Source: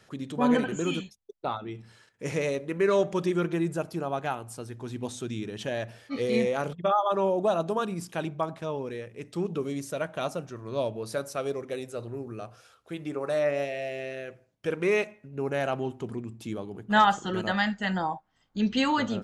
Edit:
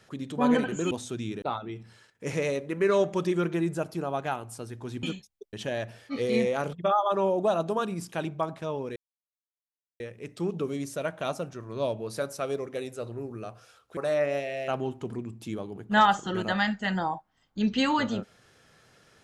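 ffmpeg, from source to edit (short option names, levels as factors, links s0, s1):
-filter_complex "[0:a]asplit=8[s0][s1][s2][s3][s4][s5][s6][s7];[s0]atrim=end=0.912[s8];[s1]atrim=start=5.018:end=5.532[s9];[s2]atrim=start=1.408:end=5.022[s10];[s3]atrim=start=0.908:end=1.412[s11];[s4]atrim=start=5.528:end=8.96,asetpts=PTS-STARTPTS,afade=t=out:st=3.428:d=0.004:c=hsin,apad=pad_dur=1.04[s12];[s5]atrim=start=8.96:end=12.932,asetpts=PTS-STARTPTS,afade=t=in:d=0.004:c=hsin[s13];[s6]atrim=start=13.218:end=13.932[s14];[s7]atrim=start=15.668[s15];[s8][s9]acrossfade=d=0.004:c1=hsin:c2=hsin[s16];[s16][s10]acrossfade=d=0.004:c1=hsin:c2=hsin[s17];[s17][s11]acrossfade=d=0.004:c1=hsin:c2=hsin[s18];[s12][s13]concat=n=2:v=0:a=1[s19];[s18][s19]acrossfade=d=0.004:c1=hsin:c2=hsin[s20];[s20][s14]acrossfade=d=0.004:c1=hsin:c2=hsin[s21];[s21][s15]acrossfade=d=0.004:c1=hsin:c2=hsin"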